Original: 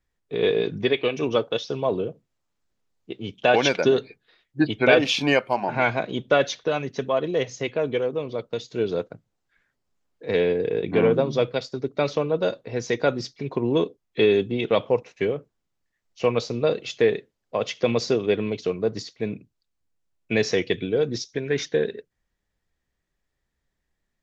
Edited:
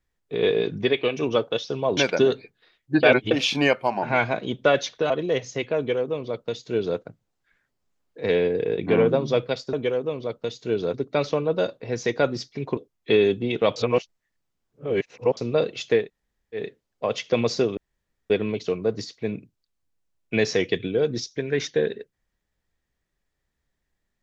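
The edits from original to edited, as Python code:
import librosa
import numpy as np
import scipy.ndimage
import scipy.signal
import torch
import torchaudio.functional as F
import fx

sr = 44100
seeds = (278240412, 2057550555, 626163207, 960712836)

y = fx.edit(x, sr, fx.cut(start_s=1.97, length_s=1.66),
    fx.reverse_span(start_s=4.69, length_s=0.28),
    fx.cut(start_s=6.76, length_s=0.39),
    fx.duplicate(start_s=7.82, length_s=1.21, to_s=11.78),
    fx.cut(start_s=13.61, length_s=0.25),
    fx.reverse_span(start_s=14.85, length_s=1.61),
    fx.insert_room_tone(at_s=17.11, length_s=0.58, crossfade_s=0.16),
    fx.insert_room_tone(at_s=18.28, length_s=0.53), tone=tone)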